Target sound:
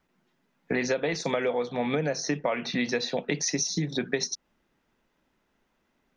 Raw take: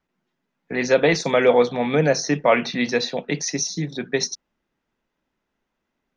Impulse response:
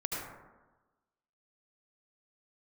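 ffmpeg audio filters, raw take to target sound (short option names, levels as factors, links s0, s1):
-af "acompressor=threshold=0.0355:ratio=12,volume=1.78"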